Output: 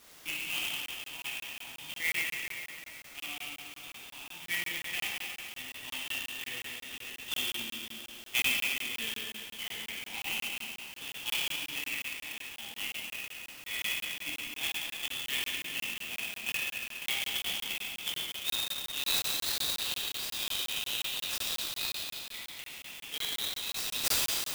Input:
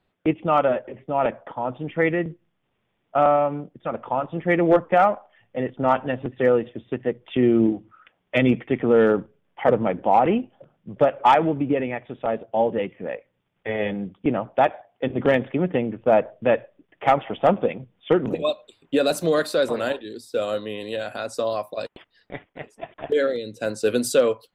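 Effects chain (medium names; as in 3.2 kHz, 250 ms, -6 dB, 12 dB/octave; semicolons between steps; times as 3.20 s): inverse Chebyshev high-pass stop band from 1.5 kHz, stop band 40 dB; gain riding within 4 dB 0.5 s; word length cut 10-bit, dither triangular; reverberation RT60 2.6 s, pre-delay 14 ms, DRR -6 dB; crackling interface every 0.18 s, samples 1024, zero, from 0.86 s; sampling jitter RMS 0.029 ms; trim +2.5 dB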